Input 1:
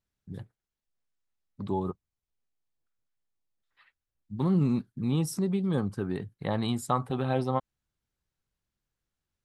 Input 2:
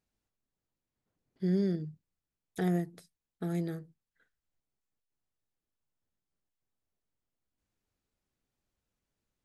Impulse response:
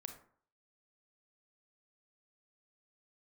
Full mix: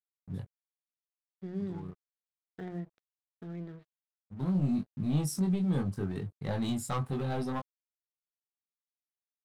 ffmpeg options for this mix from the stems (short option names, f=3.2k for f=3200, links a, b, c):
-filter_complex "[0:a]asoftclip=type=tanh:threshold=-24dB,flanger=delay=20:depth=2.1:speed=0.8,volume=0.5dB[a];[1:a]lowpass=f=3.2k:w=0.5412,lowpass=f=3.2k:w=1.3066,bandreject=f=60:t=h:w=6,bandreject=f=120:t=h:w=6,bandreject=f=180:t=h:w=6,volume=-9.5dB,asplit=2[b][c];[c]apad=whole_len=416431[d];[a][d]sidechaincompress=threshold=-50dB:ratio=3:attack=16:release=1490[e];[e][b]amix=inputs=2:normalize=0,bass=f=250:g=5,treble=f=4k:g=4,aeval=exprs='sgn(val(0))*max(abs(val(0))-0.00168,0)':c=same"